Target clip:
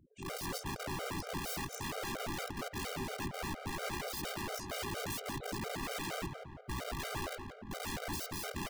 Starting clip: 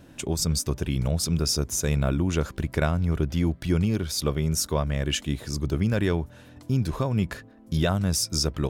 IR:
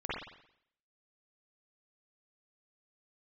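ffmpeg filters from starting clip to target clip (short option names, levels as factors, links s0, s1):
-filter_complex "[0:a]afftfilt=real='re':imag='-im':win_size=2048:overlap=0.75,lowpass=3400,aemphasis=mode=production:type=75fm,afftfilt=real='re*gte(hypot(re,im),0.00355)':imag='im*gte(hypot(re,im),0.00355)':win_size=1024:overlap=0.75,afwtdn=0.0141,areverse,acompressor=threshold=0.0141:ratio=6,areverse,tremolo=f=59:d=0.571,aeval=exprs='(mod(158*val(0)+1,2)-1)/158':c=same,asplit=2[s0][s1];[s1]adelay=173,lowpass=f=2000:p=1,volume=0.501,asplit=2[s2][s3];[s3]adelay=173,lowpass=f=2000:p=1,volume=0.54,asplit=2[s4][s5];[s5]adelay=173,lowpass=f=2000:p=1,volume=0.54,asplit=2[s6][s7];[s7]adelay=173,lowpass=f=2000:p=1,volume=0.54,asplit=2[s8][s9];[s9]adelay=173,lowpass=f=2000:p=1,volume=0.54,asplit=2[s10][s11];[s11]adelay=173,lowpass=f=2000:p=1,volume=0.54,asplit=2[s12][s13];[s13]adelay=173,lowpass=f=2000:p=1,volume=0.54[s14];[s2][s4][s6][s8][s10][s12][s14]amix=inputs=7:normalize=0[s15];[s0][s15]amix=inputs=2:normalize=0,afftfilt=real='re*gt(sin(2*PI*4.3*pts/sr)*(1-2*mod(floor(b*sr/1024/400),2)),0)':imag='im*gt(sin(2*PI*4.3*pts/sr)*(1-2*mod(floor(b*sr/1024/400),2)),0)':win_size=1024:overlap=0.75,volume=3.98"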